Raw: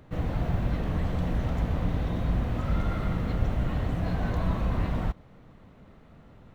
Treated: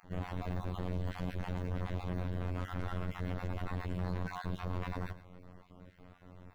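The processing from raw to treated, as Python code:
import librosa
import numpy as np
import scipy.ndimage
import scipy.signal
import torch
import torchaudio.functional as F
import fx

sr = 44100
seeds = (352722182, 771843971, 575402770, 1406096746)

p1 = fx.spec_dropout(x, sr, seeds[0], share_pct=30)
p2 = 10.0 ** (-32.0 / 20.0) * np.tanh(p1 / 10.0 ** (-32.0 / 20.0))
p3 = fx.robotise(p2, sr, hz=90.2)
p4 = p3 + fx.echo_single(p3, sr, ms=109, db=-15.5, dry=0)
y = F.gain(torch.from_numpy(p4), 1.0).numpy()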